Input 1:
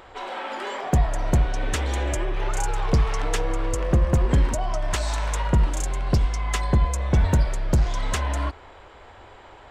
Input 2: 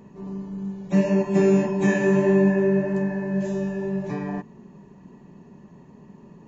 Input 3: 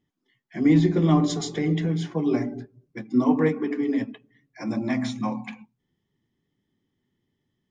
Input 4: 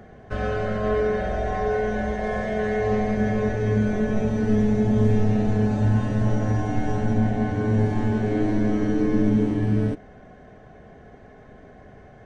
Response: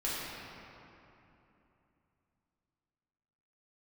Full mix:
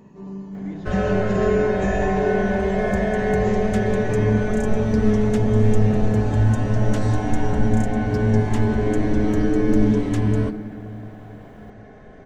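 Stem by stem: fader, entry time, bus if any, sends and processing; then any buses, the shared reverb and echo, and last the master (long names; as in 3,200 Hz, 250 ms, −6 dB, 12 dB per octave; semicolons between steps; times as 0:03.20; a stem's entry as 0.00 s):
−10.0 dB, 2.00 s, no send, bit-depth reduction 10 bits, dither none
−0.5 dB, 0.00 s, no send, downward compressor, threshold −20 dBFS, peak gain reduction 6.5 dB
−19.5 dB, 0.00 s, no send, no processing
+1.0 dB, 0.55 s, send −15 dB, no processing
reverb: on, RT60 3.0 s, pre-delay 4 ms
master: no processing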